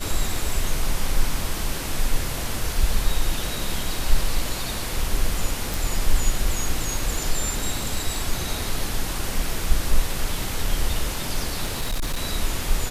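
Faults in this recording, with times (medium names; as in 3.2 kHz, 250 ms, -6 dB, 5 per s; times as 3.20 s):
5.74 s: pop
11.65–12.22 s: clipped -20.5 dBFS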